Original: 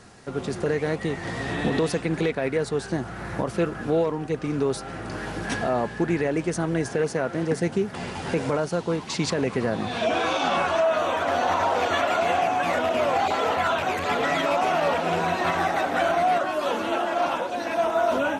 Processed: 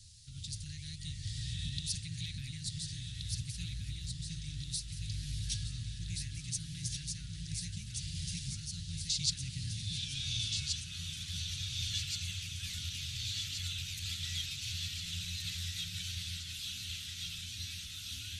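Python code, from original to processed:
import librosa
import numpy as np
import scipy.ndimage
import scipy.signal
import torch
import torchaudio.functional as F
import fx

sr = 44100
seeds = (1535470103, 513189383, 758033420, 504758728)

y = scipy.signal.sosfilt(scipy.signal.ellip(3, 1.0, 80, [100.0, 3800.0], 'bandstop', fs=sr, output='sos'), x)
y = fx.echo_alternate(y, sr, ms=713, hz=1700.0, feedback_pct=79, wet_db=-2.5)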